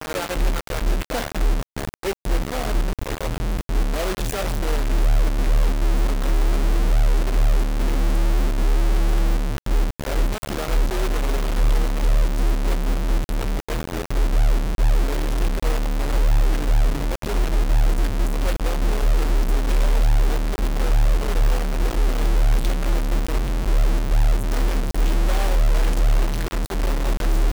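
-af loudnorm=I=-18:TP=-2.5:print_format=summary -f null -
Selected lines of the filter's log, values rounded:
Input Integrated:    -23.8 LUFS
Input True Peak:     -11.6 dBTP
Input LRA:             1.8 LU
Input Threshold:     -33.8 LUFS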